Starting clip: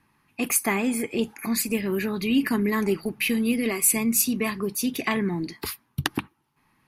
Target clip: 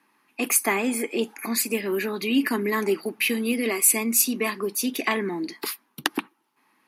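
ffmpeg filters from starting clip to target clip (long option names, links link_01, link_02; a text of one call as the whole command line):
ffmpeg -i in.wav -af "highpass=frequency=250:width=0.5412,highpass=frequency=250:width=1.3066,volume=2dB" out.wav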